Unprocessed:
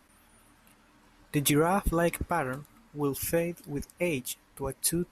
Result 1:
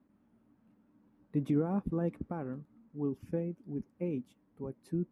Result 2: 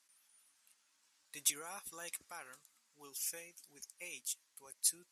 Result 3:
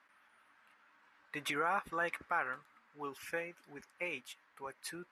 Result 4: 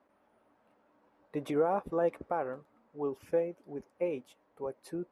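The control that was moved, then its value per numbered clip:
band-pass, frequency: 220, 7000, 1600, 560 Hz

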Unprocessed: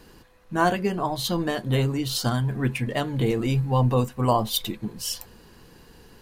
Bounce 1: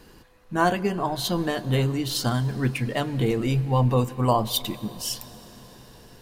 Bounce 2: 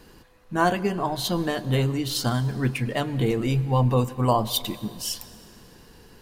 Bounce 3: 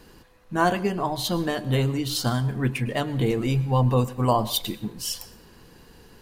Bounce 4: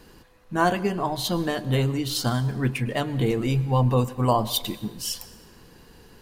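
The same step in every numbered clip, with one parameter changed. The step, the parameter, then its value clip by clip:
plate-style reverb, RT60: 5.3, 2.5, 0.51, 1.1 s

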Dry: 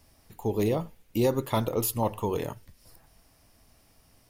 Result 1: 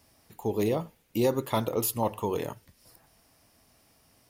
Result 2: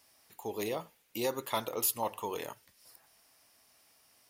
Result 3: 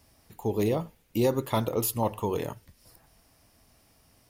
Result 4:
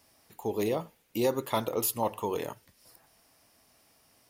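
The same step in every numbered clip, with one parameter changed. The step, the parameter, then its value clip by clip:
HPF, cutoff: 130, 1100, 44, 360 Hz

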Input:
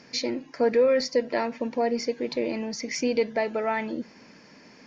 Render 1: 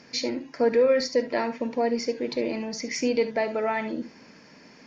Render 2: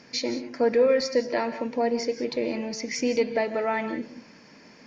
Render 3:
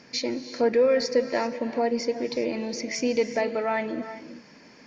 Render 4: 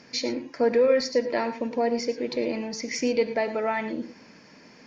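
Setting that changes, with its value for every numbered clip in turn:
non-linear reverb, gate: 90, 210, 420, 130 ms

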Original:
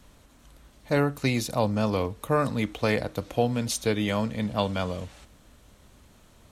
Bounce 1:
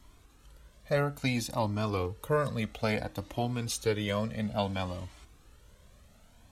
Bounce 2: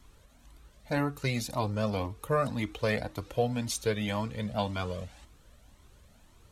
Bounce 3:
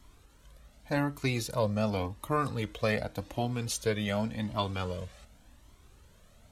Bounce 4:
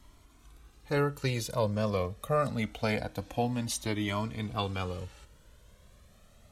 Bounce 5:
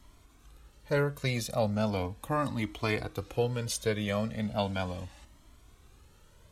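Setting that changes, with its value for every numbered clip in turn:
cascading flanger, rate: 0.59, 1.9, 0.88, 0.25, 0.37 Hz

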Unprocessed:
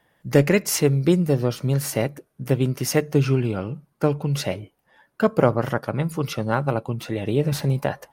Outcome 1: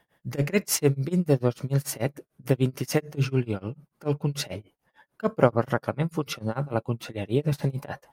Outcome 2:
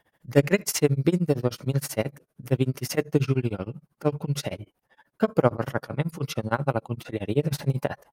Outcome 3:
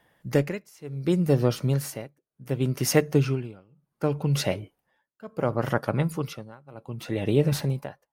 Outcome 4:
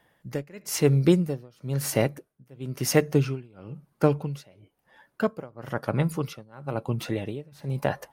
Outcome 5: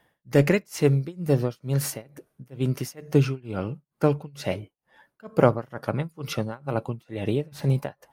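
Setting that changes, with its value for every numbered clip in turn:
tremolo, rate: 6.8, 13, 0.68, 1, 2.2 Hz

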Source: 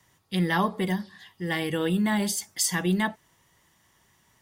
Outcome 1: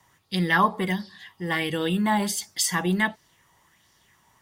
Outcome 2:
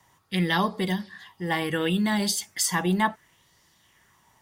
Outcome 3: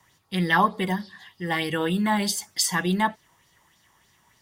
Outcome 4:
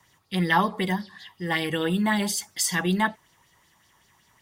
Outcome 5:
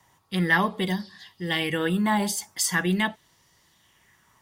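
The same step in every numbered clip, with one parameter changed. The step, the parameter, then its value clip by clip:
LFO bell, rate: 1.4, 0.69, 3.3, 5.3, 0.43 Hz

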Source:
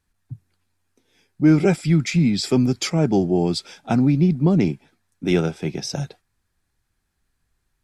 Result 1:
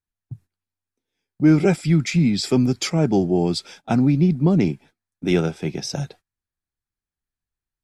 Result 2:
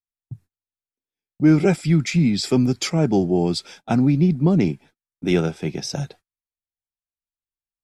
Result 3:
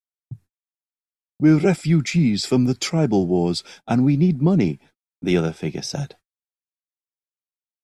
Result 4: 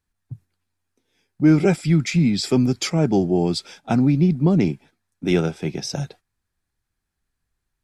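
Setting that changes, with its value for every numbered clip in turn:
gate, range: -18, -33, -56, -6 dB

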